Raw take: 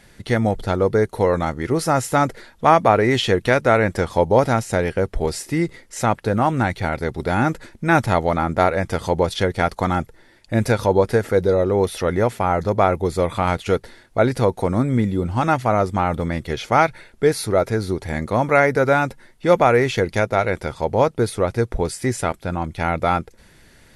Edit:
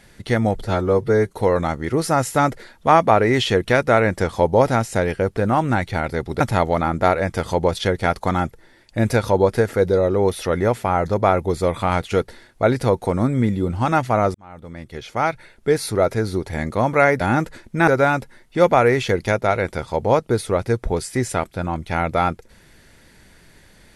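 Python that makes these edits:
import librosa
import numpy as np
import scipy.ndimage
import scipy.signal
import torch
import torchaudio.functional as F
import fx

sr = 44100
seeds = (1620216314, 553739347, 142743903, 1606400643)

y = fx.edit(x, sr, fx.stretch_span(start_s=0.65, length_s=0.45, factor=1.5),
    fx.cut(start_s=5.15, length_s=1.11),
    fx.move(start_s=7.29, length_s=0.67, to_s=18.76),
    fx.fade_in_span(start_s=15.9, length_s=1.58), tone=tone)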